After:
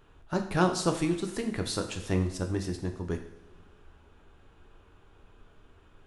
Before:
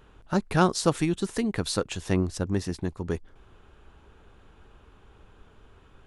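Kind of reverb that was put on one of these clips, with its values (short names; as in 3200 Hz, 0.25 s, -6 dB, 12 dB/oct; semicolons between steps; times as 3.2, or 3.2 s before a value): two-slope reverb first 0.68 s, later 2.5 s, DRR 4 dB; gain -4.5 dB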